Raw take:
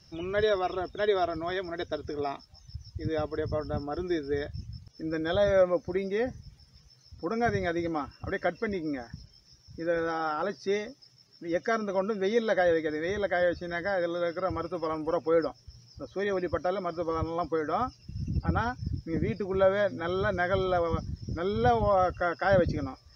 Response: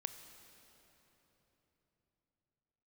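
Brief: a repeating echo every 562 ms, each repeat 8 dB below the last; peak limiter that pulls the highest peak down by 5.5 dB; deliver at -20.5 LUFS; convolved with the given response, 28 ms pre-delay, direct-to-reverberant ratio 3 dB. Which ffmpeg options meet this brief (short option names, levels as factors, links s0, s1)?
-filter_complex "[0:a]alimiter=limit=0.126:level=0:latency=1,aecho=1:1:562|1124|1686|2248|2810:0.398|0.159|0.0637|0.0255|0.0102,asplit=2[s0][s1];[1:a]atrim=start_sample=2205,adelay=28[s2];[s1][s2]afir=irnorm=-1:irlink=0,volume=0.891[s3];[s0][s3]amix=inputs=2:normalize=0,volume=2.51"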